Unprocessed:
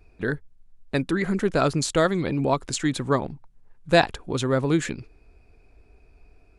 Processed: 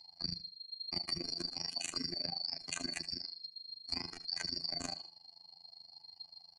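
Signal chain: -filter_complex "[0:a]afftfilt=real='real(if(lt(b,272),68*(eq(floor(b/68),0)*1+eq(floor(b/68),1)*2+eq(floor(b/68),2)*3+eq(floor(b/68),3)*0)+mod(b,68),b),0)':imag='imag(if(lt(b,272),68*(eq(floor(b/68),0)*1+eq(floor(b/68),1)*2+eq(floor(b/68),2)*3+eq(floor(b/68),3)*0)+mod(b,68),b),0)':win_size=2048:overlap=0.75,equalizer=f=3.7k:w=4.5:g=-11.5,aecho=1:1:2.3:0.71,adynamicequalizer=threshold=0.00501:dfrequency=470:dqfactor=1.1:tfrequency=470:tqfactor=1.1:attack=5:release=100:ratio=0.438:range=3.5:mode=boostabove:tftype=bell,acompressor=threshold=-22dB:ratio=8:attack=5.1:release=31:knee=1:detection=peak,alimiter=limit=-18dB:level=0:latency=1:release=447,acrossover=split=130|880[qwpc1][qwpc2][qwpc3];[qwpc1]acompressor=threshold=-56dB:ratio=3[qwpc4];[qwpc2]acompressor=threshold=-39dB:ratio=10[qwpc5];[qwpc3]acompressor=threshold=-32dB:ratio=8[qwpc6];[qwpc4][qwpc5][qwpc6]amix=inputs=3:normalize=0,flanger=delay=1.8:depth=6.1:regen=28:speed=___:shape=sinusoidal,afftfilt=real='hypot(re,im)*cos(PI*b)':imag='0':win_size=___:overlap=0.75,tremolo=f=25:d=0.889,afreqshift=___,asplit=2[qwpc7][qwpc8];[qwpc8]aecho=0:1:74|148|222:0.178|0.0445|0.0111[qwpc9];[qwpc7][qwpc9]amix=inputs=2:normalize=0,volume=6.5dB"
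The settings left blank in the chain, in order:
0.49, 2048, -170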